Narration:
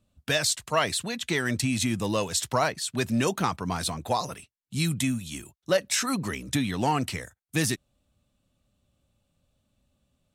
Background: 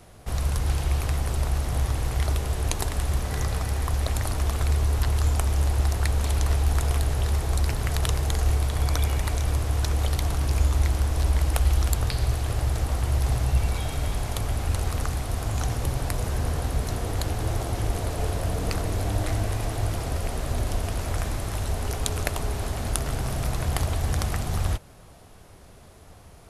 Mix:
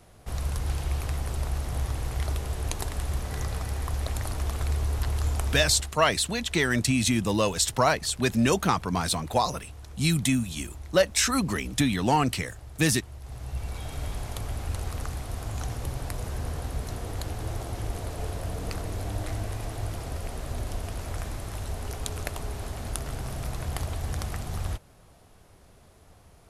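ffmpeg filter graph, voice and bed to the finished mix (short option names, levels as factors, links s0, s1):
-filter_complex "[0:a]adelay=5250,volume=1.33[s0];[1:a]volume=2.82,afade=t=out:st=5.47:d=0.46:silence=0.177828,afade=t=in:st=13.22:d=0.79:silence=0.211349[s1];[s0][s1]amix=inputs=2:normalize=0"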